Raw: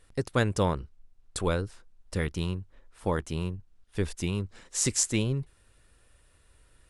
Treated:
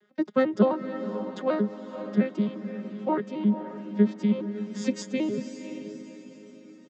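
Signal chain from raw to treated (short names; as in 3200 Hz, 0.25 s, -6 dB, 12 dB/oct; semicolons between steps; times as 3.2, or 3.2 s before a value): arpeggiated vocoder major triad, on G#3, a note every 88 ms; LPF 4500 Hz 12 dB/oct; comb 5.4 ms, depth 64%; diffused feedback echo 0.535 s, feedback 43%, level -9.5 dB; on a send at -19.5 dB: reverb RT60 1.7 s, pre-delay 0.17 s; on the sum: gain +3.5 dB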